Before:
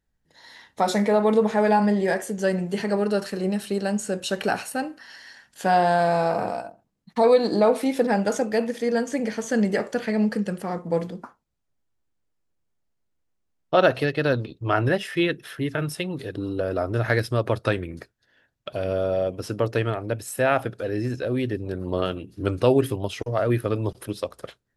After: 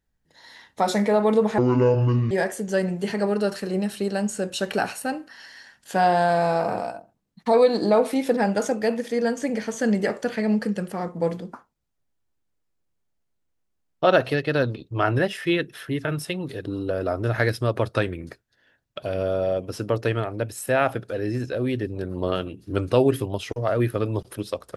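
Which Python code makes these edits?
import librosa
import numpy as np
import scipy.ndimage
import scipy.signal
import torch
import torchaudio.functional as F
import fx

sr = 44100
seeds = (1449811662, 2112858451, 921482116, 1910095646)

y = fx.edit(x, sr, fx.speed_span(start_s=1.58, length_s=0.43, speed=0.59), tone=tone)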